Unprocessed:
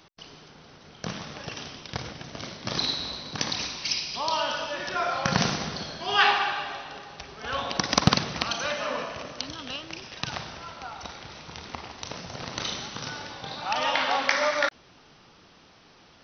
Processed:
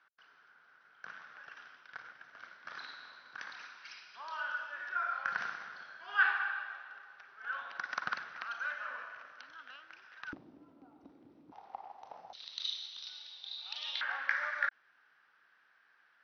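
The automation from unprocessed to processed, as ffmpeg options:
-af "asetnsamples=n=441:p=0,asendcmd='10.33 bandpass f 290;11.52 bandpass f 790;12.33 bandpass f 3800;14.01 bandpass f 1600',bandpass=f=1500:t=q:w=7.3:csg=0"

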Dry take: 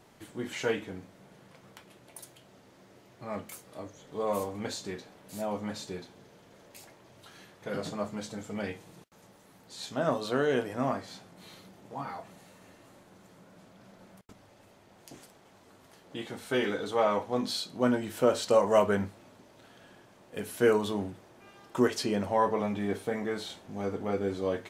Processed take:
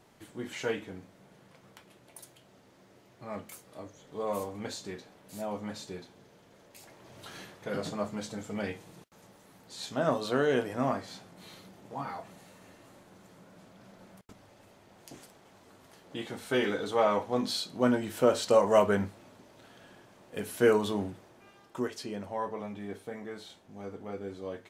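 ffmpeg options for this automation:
-af "volume=2.24,afade=t=in:st=6.79:d=0.58:silence=0.334965,afade=t=out:st=7.37:d=0.3:silence=0.473151,afade=t=out:st=21.1:d=0.76:silence=0.354813"

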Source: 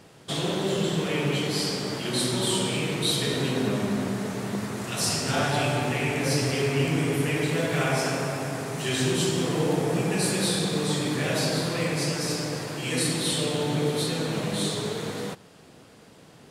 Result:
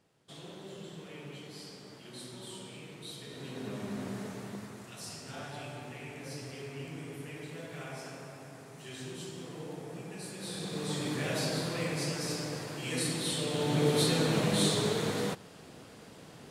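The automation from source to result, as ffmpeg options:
-af "volume=2.66,afade=t=in:st=3.29:d=0.89:silence=0.298538,afade=t=out:st=4.18:d=0.83:silence=0.375837,afade=t=in:st=10.38:d=0.71:silence=0.281838,afade=t=in:st=13.46:d=0.55:silence=0.446684"

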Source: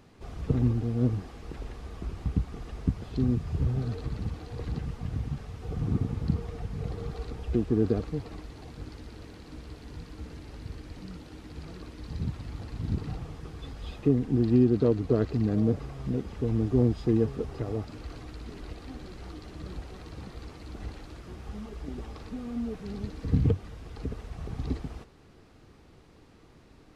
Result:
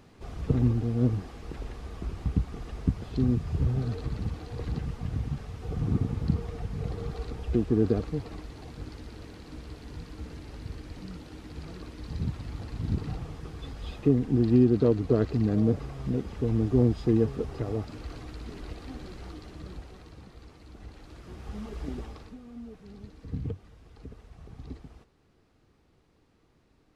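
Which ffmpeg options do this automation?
-af "volume=3.55,afade=t=out:st=19.09:d=1.14:silence=0.398107,afade=t=in:st=20.89:d=0.96:silence=0.316228,afade=t=out:st=21.85:d=0.54:silence=0.223872"

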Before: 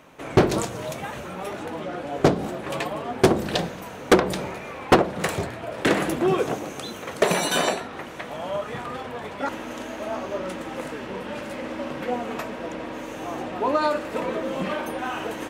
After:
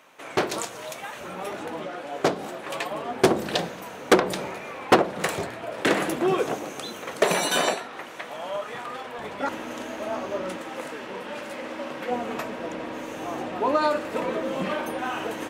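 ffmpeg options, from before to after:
-af "asetnsamples=n=441:p=0,asendcmd='1.21 highpass f 220;1.87 highpass f 600;2.9 highpass f 250;7.74 highpass f 540;9.19 highpass f 130;10.57 highpass f 400;12.11 highpass f 110',highpass=f=890:p=1"

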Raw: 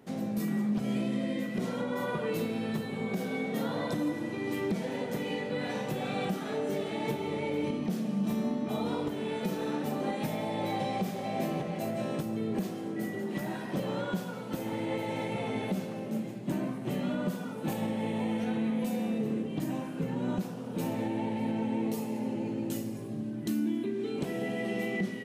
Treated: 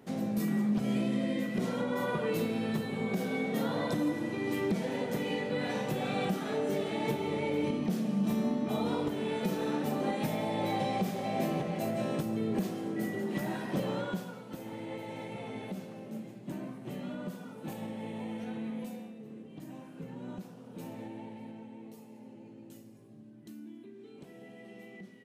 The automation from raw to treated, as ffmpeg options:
-af "volume=2.24,afade=t=out:st=13.82:d=0.62:silence=0.398107,afade=t=out:st=18.79:d=0.35:silence=0.334965,afade=t=in:st=19.14:d=0.86:silence=0.473151,afade=t=out:st=21.05:d=0.67:silence=0.473151"

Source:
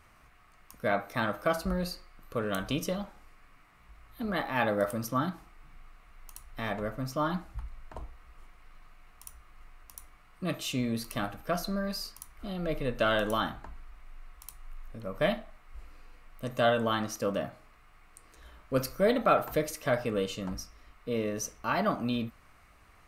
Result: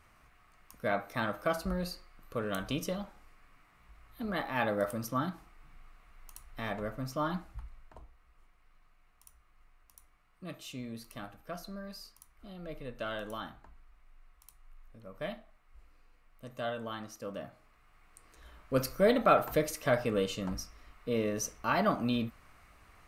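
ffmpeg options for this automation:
-af "volume=2.51,afade=t=out:st=7.37:d=0.65:silence=0.398107,afade=t=in:st=17.22:d=1.78:silence=0.281838"

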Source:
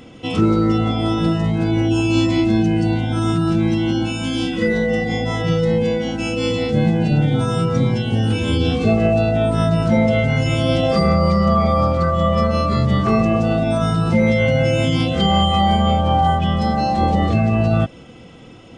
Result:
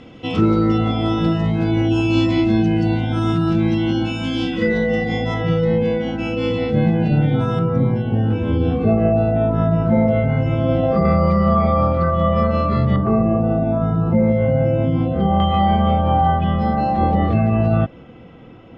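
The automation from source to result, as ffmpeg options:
-af "asetnsamples=n=441:p=0,asendcmd='5.34 lowpass f 2700;7.59 lowpass f 1400;11.05 lowpass f 2400;12.96 lowpass f 1000;15.4 lowpass f 2100',lowpass=4300"

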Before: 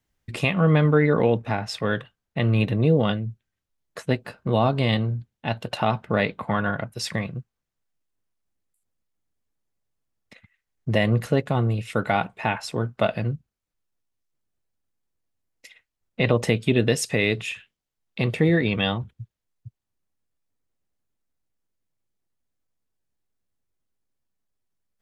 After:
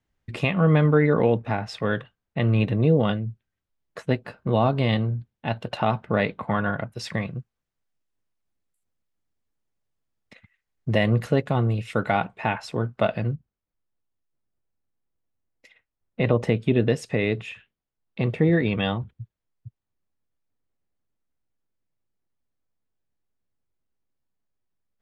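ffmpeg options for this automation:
-af "asetnsamples=n=441:p=0,asendcmd='7.17 lowpass f 5400;12.11 lowpass f 3300;13.34 lowpass f 1400;18.53 lowpass f 2300',lowpass=f=3000:p=1"

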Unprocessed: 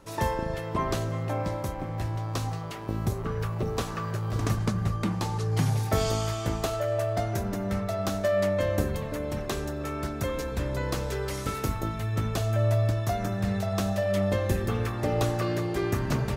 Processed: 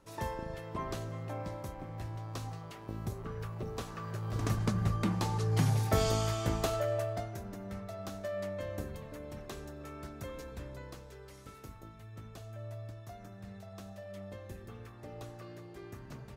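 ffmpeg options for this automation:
-af "volume=0.708,afade=t=in:st=3.95:d=0.9:silence=0.446684,afade=t=out:st=6.76:d=0.56:silence=0.316228,afade=t=out:st=10.49:d=0.55:silence=0.446684"

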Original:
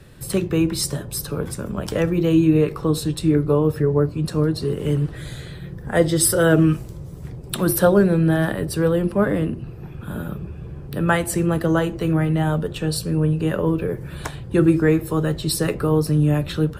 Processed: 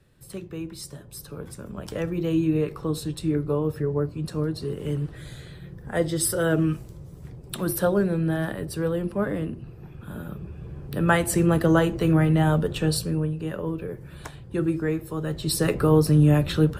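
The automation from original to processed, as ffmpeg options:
-af "volume=2.99,afade=t=in:st=0.9:d=1.4:silence=0.398107,afade=t=in:st=10.23:d=1.23:silence=0.446684,afade=t=out:st=12.88:d=0.43:silence=0.354813,afade=t=in:st=15.2:d=0.62:silence=0.334965"

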